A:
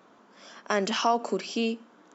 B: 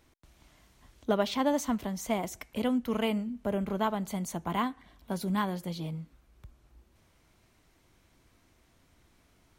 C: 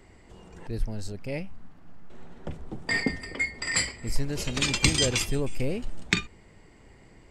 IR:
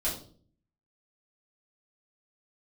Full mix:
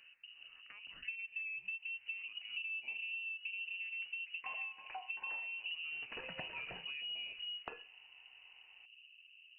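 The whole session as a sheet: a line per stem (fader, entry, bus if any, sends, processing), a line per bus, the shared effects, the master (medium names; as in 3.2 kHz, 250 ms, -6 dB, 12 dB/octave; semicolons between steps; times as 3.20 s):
-11.5 dB, 0.00 s, no send, compression 3:1, threshold -37 dBFS, peak gain reduction 14 dB; auto duck -10 dB, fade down 0.20 s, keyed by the second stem
-1.0 dB, 0.00 s, no send, tilt EQ -3.5 dB/octave; compression 3:1, threshold -32 dBFS, peak gain reduction 11.5 dB; band-pass filter 250 Hz, Q 1.9
-11.0 dB, 1.55 s, send -14.5 dB, three-band isolator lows -18 dB, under 320 Hz, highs -12 dB, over 2.3 kHz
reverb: on, RT60 0.50 s, pre-delay 4 ms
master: bass shelf 290 Hz +6.5 dB; frequency inversion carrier 2.9 kHz; compression 4:1, threshold -43 dBFS, peak gain reduction 14.5 dB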